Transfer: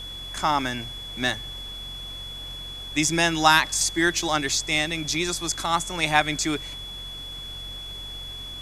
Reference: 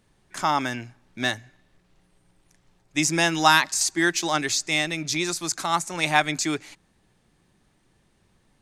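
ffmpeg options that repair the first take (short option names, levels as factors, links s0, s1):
-af "adeclick=t=4,bandreject=f=45.9:t=h:w=4,bandreject=f=91.8:t=h:w=4,bandreject=f=137.7:t=h:w=4,bandreject=f=3400:w=30,afftdn=nr=28:nf=-37"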